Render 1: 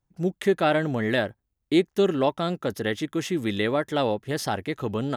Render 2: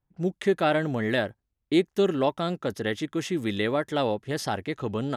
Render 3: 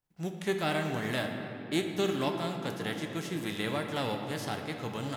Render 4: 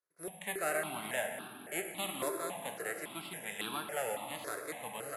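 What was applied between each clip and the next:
low-pass opened by the level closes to 2900 Hz, open at -22.5 dBFS; gain -1.5 dB
spectral whitening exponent 0.6; shoebox room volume 190 m³, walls hard, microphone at 0.32 m; gain -8.5 dB
careless resampling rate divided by 4×, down filtered, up zero stuff; BPF 350–5000 Hz; step phaser 3.6 Hz 810–2000 Hz

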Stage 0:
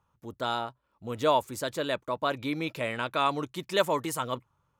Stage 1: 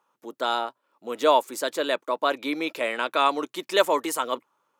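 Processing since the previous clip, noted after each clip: HPF 280 Hz 24 dB/oct; gain +5 dB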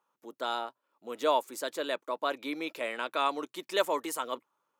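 high shelf 12000 Hz +3 dB; gain -7.5 dB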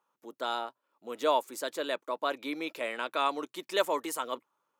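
nothing audible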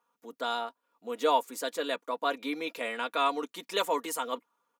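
comb 4.2 ms, depth 66%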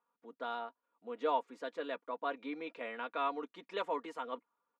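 LPF 2400 Hz 12 dB/oct; gain -7 dB

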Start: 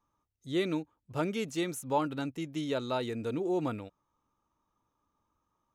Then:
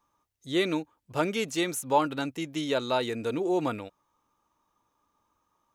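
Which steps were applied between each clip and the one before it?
low shelf 310 Hz -9 dB; notch 1300 Hz, Q 23; gain +7.5 dB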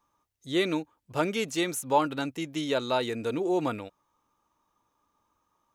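nothing audible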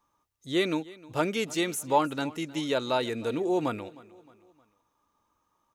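feedback echo 0.31 s, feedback 45%, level -21 dB

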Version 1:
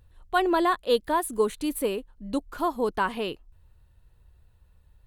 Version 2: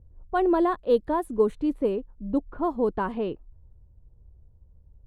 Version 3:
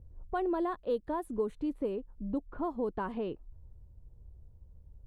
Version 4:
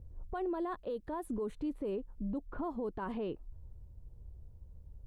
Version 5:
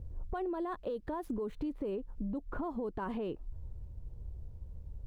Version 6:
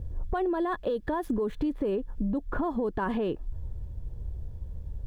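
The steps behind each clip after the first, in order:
low-pass opened by the level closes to 640 Hz, open at -21 dBFS; tilt shelf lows +10 dB, about 1300 Hz; gain -5.5 dB
compressor 2:1, threshold -37 dBFS, peak gain reduction 11.5 dB
limiter -32 dBFS, peak gain reduction 11 dB; gain +2 dB
median filter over 5 samples; compressor 4:1, threshold -41 dBFS, peak gain reduction 7.5 dB; gain +6.5 dB
small resonant body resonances 1700/3400 Hz, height 9 dB, ringing for 25 ms; gain +8 dB

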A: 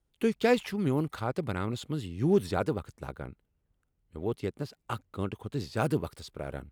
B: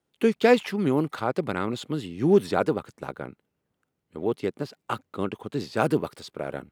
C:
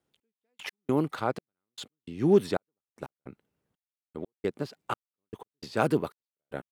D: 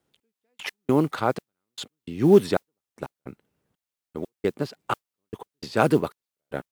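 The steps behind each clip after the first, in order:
HPF 190 Hz 12 dB/oct; high shelf 5300 Hz -6 dB; gain +6.5 dB
step gate "xx....x..xxx" 152 bpm -60 dB; gain -2 dB
modulation noise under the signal 34 dB; gain +5.5 dB

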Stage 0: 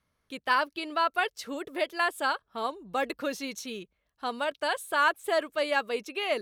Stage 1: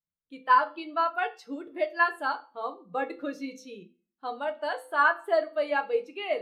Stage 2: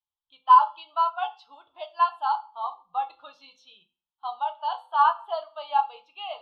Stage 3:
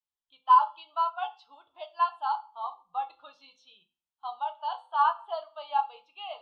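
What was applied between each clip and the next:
resonator 170 Hz, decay 0.56 s, harmonics all, mix 60%; reverb RT60 0.50 s, pre-delay 6 ms, DRR 5 dB; spectral expander 1.5:1; gain +7.5 dB
EQ curve 120 Hz 0 dB, 180 Hz -20 dB, 310 Hz -27 dB, 490 Hz -20 dB, 860 Hz +15 dB, 1300 Hz +4 dB, 1900 Hz -19 dB, 3200 Hz +12 dB, 6800 Hz -13 dB, 10000 Hz -18 dB; gain -4.5 dB
downsampling 22050 Hz; gain -4 dB

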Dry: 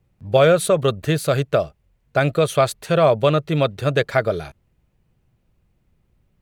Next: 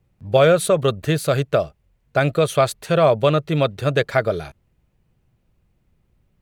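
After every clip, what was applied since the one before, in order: nothing audible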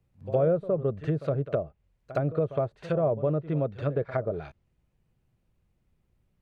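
treble ducked by the level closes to 590 Hz, closed at -15 dBFS; pre-echo 64 ms -15 dB; gain -7.5 dB

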